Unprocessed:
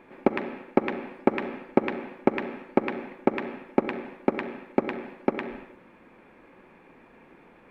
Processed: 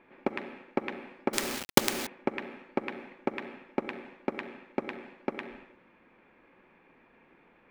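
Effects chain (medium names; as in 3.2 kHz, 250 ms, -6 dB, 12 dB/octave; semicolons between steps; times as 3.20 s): level-controlled noise filter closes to 3 kHz, open at -25 dBFS; 1.33–2.07 s: companded quantiser 2-bit; treble shelf 2.1 kHz +9.5 dB; trim -9 dB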